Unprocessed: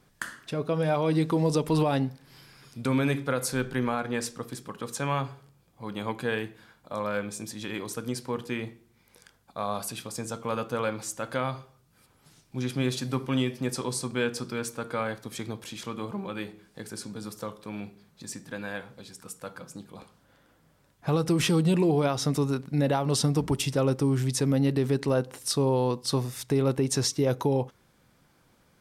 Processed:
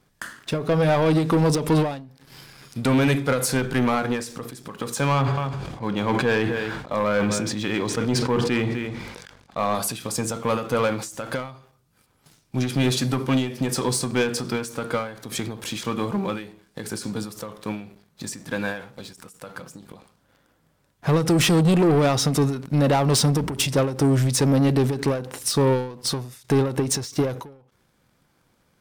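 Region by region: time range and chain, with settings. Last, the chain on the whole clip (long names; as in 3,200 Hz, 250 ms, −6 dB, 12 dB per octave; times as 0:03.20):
0:05.12–0:09.75: high-frequency loss of the air 90 metres + single-tap delay 252 ms −17.5 dB + level that may fall only so fast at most 32 dB per second
whole clip: leveller curve on the samples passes 2; every ending faded ahead of time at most 100 dB per second; level +2.5 dB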